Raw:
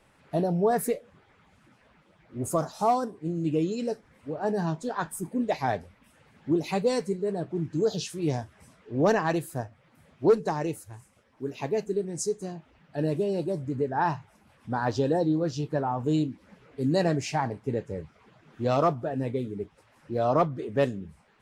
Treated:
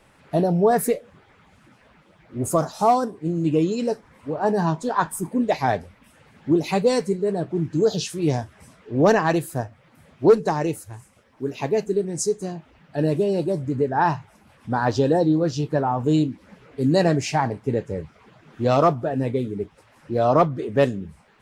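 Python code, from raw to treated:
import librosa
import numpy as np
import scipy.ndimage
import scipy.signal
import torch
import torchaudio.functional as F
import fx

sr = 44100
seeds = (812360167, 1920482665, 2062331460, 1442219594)

y = fx.peak_eq(x, sr, hz=1000.0, db=6.0, octaves=0.5, at=(3.33, 5.39))
y = y * librosa.db_to_amplitude(6.0)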